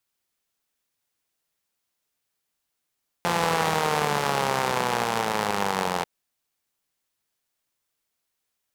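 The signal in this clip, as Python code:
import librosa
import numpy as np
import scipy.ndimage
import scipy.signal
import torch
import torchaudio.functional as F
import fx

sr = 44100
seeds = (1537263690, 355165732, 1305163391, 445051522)

y = fx.engine_four_rev(sr, seeds[0], length_s=2.79, rpm=5200, resonances_hz=(200.0, 470.0, 800.0), end_rpm=2600)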